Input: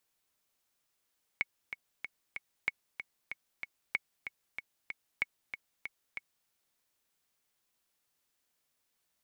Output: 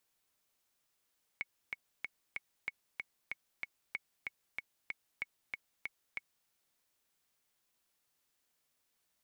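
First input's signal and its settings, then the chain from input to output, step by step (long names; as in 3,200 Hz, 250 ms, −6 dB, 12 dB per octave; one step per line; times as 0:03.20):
click track 189 BPM, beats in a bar 4, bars 4, 2,210 Hz, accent 9.5 dB −16 dBFS
brickwall limiter −24 dBFS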